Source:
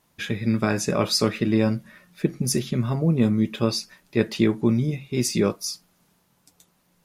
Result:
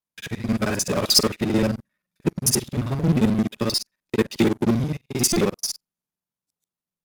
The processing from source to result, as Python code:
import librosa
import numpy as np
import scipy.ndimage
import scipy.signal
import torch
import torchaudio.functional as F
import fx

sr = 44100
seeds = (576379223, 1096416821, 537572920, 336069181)

p1 = fx.local_reverse(x, sr, ms=44.0)
p2 = fx.fuzz(p1, sr, gain_db=29.0, gate_db=-39.0)
p3 = p1 + (p2 * 10.0 ** (-6.0 / 20.0))
p4 = fx.high_shelf(p3, sr, hz=5300.0, db=6.0)
p5 = fx.buffer_glitch(p4, sr, at_s=(3.75, 5.33), block=128, repeats=10)
y = fx.upward_expand(p5, sr, threshold_db=-31.0, expansion=2.5)